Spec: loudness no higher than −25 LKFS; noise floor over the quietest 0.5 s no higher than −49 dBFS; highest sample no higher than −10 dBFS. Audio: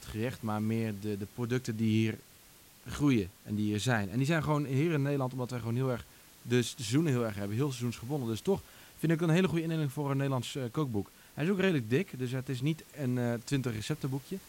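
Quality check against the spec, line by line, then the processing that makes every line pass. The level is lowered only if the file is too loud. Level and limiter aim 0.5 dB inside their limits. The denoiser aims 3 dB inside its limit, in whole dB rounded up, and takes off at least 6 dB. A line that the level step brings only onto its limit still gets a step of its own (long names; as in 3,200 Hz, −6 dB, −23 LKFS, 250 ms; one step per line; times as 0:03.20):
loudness −32.5 LKFS: in spec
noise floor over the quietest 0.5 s −57 dBFS: in spec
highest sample −16.0 dBFS: in spec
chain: no processing needed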